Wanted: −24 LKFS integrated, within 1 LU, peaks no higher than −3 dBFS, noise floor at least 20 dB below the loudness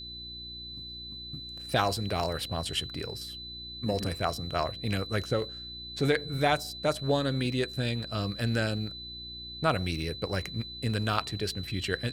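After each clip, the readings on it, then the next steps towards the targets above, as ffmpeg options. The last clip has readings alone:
mains hum 60 Hz; hum harmonics up to 360 Hz; level of the hum −47 dBFS; interfering tone 4,000 Hz; level of the tone −40 dBFS; integrated loudness −31.5 LKFS; sample peak −8.0 dBFS; target loudness −24.0 LKFS
→ -af "bandreject=frequency=60:width_type=h:width=4,bandreject=frequency=120:width_type=h:width=4,bandreject=frequency=180:width_type=h:width=4,bandreject=frequency=240:width_type=h:width=4,bandreject=frequency=300:width_type=h:width=4,bandreject=frequency=360:width_type=h:width=4"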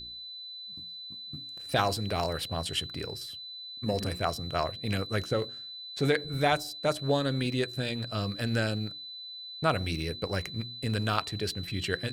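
mains hum none found; interfering tone 4,000 Hz; level of the tone −40 dBFS
→ -af "bandreject=frequency=4000:width=30"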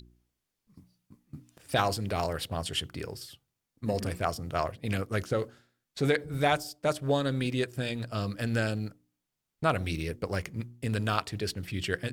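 interfering tone none found; integrated loudness −31.5 LKFS; sample peak −8.5 dBFS; target loudness −24.0 LKFS
→ -af "volume=7.5dB,alimiter=limit=-3dB:level=0:latency=1"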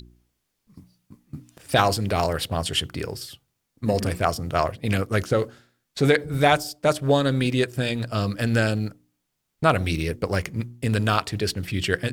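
integrated loudness −24.0 LKFS; sample peak −3.0 dBFS; background noise floor −78 dBFS

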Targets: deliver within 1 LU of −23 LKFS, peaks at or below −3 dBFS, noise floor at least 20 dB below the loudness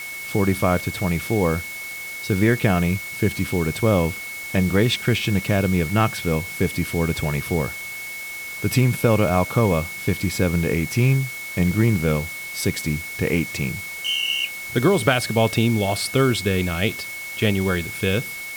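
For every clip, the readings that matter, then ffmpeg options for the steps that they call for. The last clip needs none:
interfering tone 2,200 Hz; level of the tone −31 dBFS; background noise floor −33 dBFS; target noise floor −42 dBFS; integrated loudness −22.0 LKFS; sample peak −3.5 dBFS; target loudness −23.0 LKFS
→ -af "bandreject=frequency=2200:width=30"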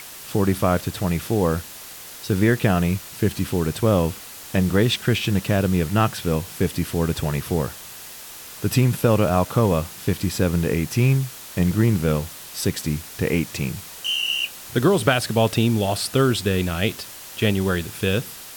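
interfering tone none found; background noise floor −39 dBFS; target noise floor −42 dBFS
→ -af "afftdn=noise_reduction=6:noise_floor=-39"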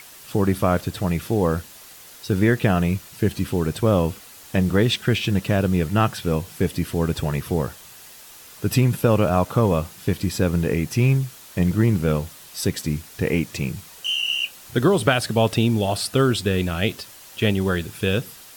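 background noise floor −44 dBFS; integrated loudness −22.0 LKFS; sample peak −3.5 dBFS; target loudness −23.0 LKFS
→ -af "volume=-1dB"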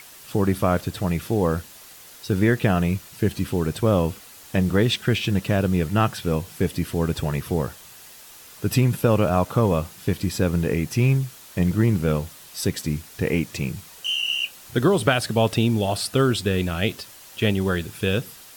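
integrated loudness −23.0 LKFS; sample peak −4.5 dBFS; background noise floor −45 dBFS

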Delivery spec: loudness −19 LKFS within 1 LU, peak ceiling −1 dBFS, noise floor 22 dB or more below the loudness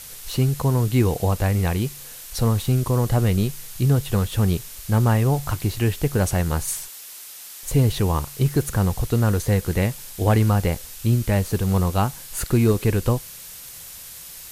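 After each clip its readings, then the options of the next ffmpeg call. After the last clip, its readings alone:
background noise floor −40 dBFS; target noise floor −44 dBFS; integrated loudness −22.0 LKFS; sample peak −7.5 dBFS; target loudness −19.0 LKFS
→ -af "afftdn=noise_reduction=6:noise_floor=-40"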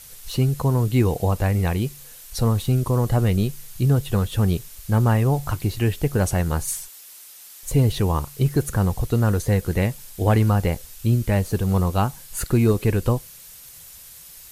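background noise floor −44 dBFS; integrated loudness −22.0 LKFS; sample peak −7.5 dBFS; target loudness −19.0 LKFS
→ -af "volume=3dB"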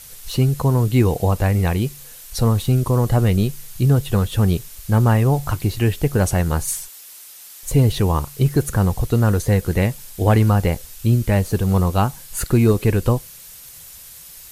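integrated loudness −19.0 LKFS; sample peak −4.5 dBFS; background noise floor −41 dBFS

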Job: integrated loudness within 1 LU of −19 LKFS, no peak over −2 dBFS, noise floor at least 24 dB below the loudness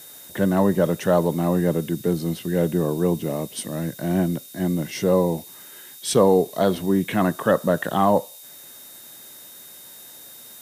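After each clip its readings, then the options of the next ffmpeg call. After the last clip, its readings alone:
interfering tone 3,700 Hz; level of the tone −50 dBFS; background noise floor −43 dBFS; target noise floor −46 dBFS; integrated loudness −22.0 LKFS; sample peak −5.5 dBFS; target loudness −19.0 LKFS
→ -af "bandreject=frequency=3700:width=30"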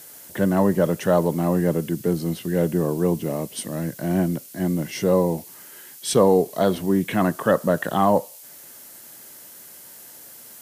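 interfering tone none found; background noise floor −44 dBFS; target noise floor −46 dBFS
→ -af "afftdn=noise_reduction=6:noise_floor=-44"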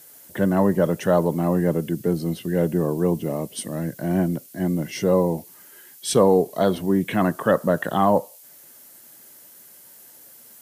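background noise floor −48 dBFS; integrated loudness −22.0 LKFS; sample peak −6.0 dBFS; target loudness −19.0 LKFS
→ -af "volume=3dB"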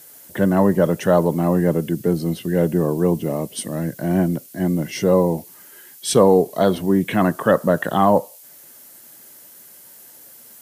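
integrated loudness −19.0 LKFS; sample peak −3.0 dBFS; background noise floor −45 dBFS

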